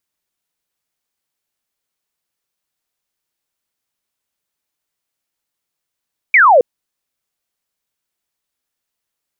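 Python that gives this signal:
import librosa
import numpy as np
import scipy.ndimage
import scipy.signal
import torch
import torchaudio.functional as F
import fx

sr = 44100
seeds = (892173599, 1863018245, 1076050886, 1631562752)

y = fx.laser_zap(sr, level_db=-5, start_hz=2400.0, end_hz=460.0, length_s=0.27, wave='sine')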